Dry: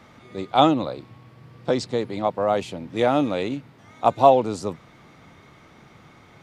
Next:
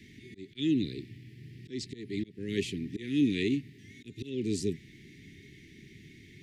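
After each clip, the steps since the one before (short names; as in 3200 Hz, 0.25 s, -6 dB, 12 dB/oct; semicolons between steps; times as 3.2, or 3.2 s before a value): auto swell 0.314 s; Chebyshev band-stop 410–1800 Hz, order 5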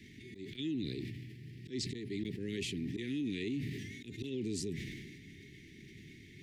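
limiter -28 dBFS, peak gain reduction 11.5 dB; sustainer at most 31 dB/s; gain -2 dB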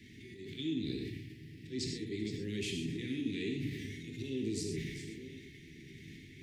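reverse delay 0.685 s, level -12 dB; non-linear reverb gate 0.15 s flat, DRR 2 dB; gain -1.5 dB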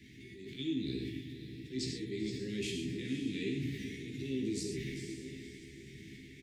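doubler 15 ms -5 dB; diffused feedback echo 0.515 s, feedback 43%, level -11 dB; gain -1.5 dB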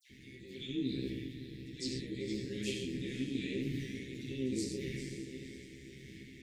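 dispersion lows, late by 94 ms, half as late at 2300 Hz; AM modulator 130 Hz, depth 30%; gain +1.5 dB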